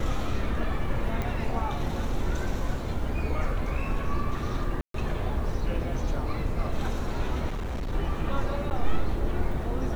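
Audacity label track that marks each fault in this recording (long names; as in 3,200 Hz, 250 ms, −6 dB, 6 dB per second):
1.220000	1.220000	click −18 dBFS
4.810000	4.940000	drop-out 133 ms
7.500000	7.930000	clipping −28 dBFS
8.700000	8.710000	drop-out 9.5 ms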